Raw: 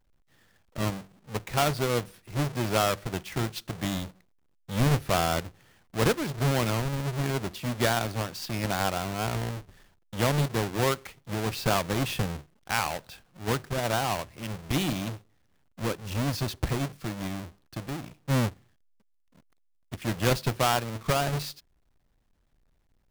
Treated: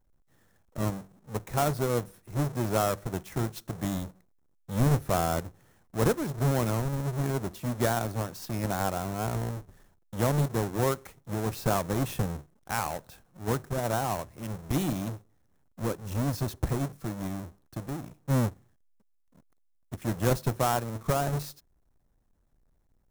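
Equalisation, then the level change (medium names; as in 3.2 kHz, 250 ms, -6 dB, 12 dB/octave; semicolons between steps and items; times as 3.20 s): peaking EQ 2.9 kHz -10.5 dB 1.6 oct; band-stop 4.7 kHz, Q 13; 0.0 dB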